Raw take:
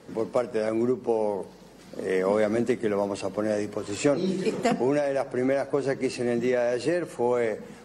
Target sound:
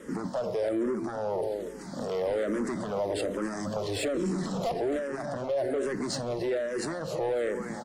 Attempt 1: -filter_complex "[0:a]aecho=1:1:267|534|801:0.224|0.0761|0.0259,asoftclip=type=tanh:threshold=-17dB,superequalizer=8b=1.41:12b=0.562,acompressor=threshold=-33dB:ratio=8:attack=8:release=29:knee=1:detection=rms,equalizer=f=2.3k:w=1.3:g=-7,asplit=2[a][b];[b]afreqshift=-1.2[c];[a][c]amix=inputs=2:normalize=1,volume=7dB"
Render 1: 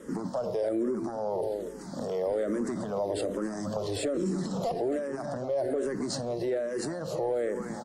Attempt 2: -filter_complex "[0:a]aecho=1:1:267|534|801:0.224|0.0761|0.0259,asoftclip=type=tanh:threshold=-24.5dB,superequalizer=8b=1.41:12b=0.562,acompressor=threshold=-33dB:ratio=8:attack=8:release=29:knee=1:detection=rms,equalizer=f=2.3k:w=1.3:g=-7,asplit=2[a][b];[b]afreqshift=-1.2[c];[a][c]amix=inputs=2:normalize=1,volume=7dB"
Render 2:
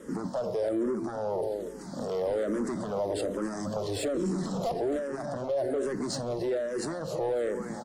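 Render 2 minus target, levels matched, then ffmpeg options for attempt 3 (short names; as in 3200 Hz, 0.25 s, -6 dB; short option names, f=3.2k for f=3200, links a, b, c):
2000 Hz band -4.0 dB
-filter_complex "[0:a]aecho=1:1:267|534|801:0.224|0.0761|0.0259,asoftclip=type=tanh:threshold=-24.5dB,superequalizer=8b=1.41:12b=0.562,acompressor=threshold=-33dB:ratio=8:attack=8:release=29:knee=1:detection=rms,asplit=2[a][b];[b]afreqshift=-1.2[c];[a][c]amix=inputs=2:normalize=1,volume=7dB"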